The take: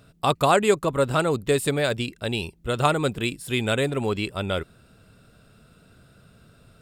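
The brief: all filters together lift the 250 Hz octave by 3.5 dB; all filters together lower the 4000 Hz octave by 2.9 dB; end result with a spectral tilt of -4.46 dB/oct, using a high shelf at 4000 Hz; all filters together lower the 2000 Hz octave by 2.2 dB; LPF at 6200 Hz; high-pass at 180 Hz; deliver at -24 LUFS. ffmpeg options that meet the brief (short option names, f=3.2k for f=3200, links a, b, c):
-af "highpass=180,lowpass=6.2k,equalizer=f=250:t=o:g=6,equalizer=f=2k:t=o:g=-3.5,highshelf=f=4k:g=8,equalizer=f=4k:t=o:g=-6,volume=-0.5dB"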